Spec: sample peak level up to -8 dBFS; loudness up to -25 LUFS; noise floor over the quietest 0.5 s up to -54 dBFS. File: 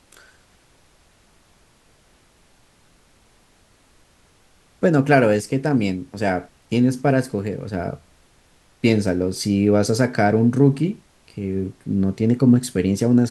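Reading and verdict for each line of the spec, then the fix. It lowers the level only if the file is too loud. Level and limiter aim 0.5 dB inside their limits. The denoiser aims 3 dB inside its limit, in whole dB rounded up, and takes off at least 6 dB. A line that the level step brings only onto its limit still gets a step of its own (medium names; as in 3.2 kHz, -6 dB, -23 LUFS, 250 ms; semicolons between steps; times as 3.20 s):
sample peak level -3.5 dBFS: fail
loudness -20.0 LUFS: fail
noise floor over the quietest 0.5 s -56 dBFS: pass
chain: trim -5.5 dB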